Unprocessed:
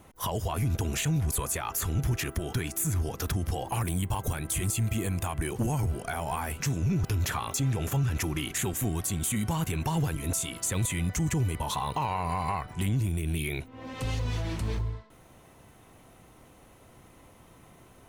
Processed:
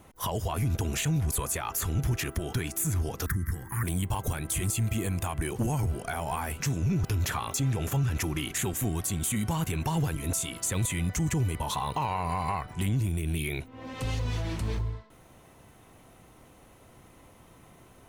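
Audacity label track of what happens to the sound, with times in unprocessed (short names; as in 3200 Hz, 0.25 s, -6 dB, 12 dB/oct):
3.260000	3.830000	EQ curve 180 Hz 0 dB, 390 Hz -8 dB, 660 Hz -27 dB, 1000 Hz -5 dB, 1900 Hz +11 dB, 2700 Hz -21 dB, 16000 Hz +8 dB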